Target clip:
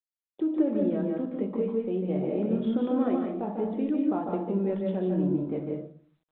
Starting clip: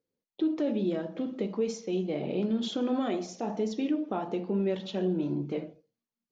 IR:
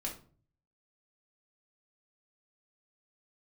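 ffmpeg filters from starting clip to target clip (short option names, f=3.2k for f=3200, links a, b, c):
-filter_complex "[0:a]lowpass=1.5k,asplit=2[a][b];[1:a]atrim=start_sample=2205,adelay=147[c];[b][c]afir=irnorm=-1:irlink=0,volume=-3dB[d];[a][d]amix=inputs=2:normalize=0" -ar 8000 -c:a adpcm_g726 -b:a 40k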